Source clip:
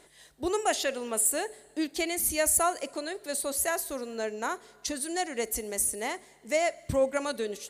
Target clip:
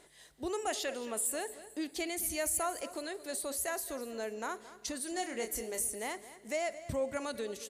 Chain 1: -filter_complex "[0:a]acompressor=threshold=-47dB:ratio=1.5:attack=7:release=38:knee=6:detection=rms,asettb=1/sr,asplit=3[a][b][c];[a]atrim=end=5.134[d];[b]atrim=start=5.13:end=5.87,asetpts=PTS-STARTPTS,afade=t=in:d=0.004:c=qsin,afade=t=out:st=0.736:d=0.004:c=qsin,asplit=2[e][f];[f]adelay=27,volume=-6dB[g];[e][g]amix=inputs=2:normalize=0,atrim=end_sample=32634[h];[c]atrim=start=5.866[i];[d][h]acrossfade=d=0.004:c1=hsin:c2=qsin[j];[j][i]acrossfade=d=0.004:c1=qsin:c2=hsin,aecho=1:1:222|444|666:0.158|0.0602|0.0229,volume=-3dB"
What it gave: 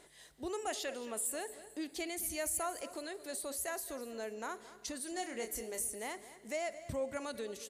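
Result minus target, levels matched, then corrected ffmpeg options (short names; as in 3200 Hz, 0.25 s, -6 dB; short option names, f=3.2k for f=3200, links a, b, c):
compressor: peak gain reduction +3.5 dB
-filter_complex "[0:a]acompressor=threshold=-37dB:ratio=1.5:attack=7:release=38:knee=6:detection=rms,asettb=1/sr,asplit=3[a][b][c];[a]atrim=end=5.134[d];[b]atrim=start=5.13:end=5.87,asetpts=PTS-STARTPTS,afade=t=in:d=0.004:c=qsin,afade=t=out:st=0.736:d=0.004:c=qsin,asplit=2[e][f];[f]adelay=27,volume=-6dB[g];[e][g]amix=inputs=2:normalize=0,atrim=end_sample=32634[h];[c]atrim=start=5.866[i];[d][h]acrossfade=d=0.004:c1=hsin:c2=qsin[j];[j][i]acrossfade=d=0.004:c1=qsin:c2=hsin,aecho=1:1:222|444|666:0.158|0.0602|0.0229,volume=-3dB"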